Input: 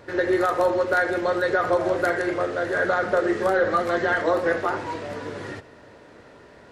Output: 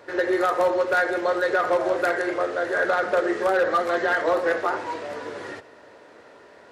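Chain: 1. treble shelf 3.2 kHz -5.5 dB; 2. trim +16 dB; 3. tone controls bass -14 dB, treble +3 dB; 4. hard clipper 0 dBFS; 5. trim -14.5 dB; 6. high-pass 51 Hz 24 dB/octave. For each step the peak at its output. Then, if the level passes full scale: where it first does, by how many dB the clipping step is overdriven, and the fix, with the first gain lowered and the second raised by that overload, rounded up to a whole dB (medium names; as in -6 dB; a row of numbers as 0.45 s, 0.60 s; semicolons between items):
-10.0 dBFS, +6.0 dBFS, +5.0 dBFS, 0.0 dBFS, -14.5 dBFS, -12.5 dBFS; step 2, 5.0 dB; step 2 +11 dB, step 5 -9.5 dB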